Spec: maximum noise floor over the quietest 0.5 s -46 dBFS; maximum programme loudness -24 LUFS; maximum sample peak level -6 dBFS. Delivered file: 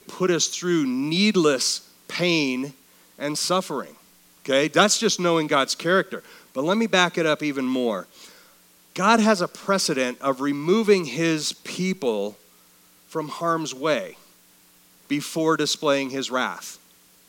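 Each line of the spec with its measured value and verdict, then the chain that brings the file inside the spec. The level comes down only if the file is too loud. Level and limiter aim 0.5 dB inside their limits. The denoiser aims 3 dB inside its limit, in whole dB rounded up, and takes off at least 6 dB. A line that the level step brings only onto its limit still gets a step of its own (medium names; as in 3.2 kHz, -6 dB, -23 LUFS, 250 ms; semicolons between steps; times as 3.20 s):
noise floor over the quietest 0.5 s -56 dBFS: pass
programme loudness -22.5 LUFS: fail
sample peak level -2.5 dBFS: fail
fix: trim -2 dB; peak limiter -6.5 dBFS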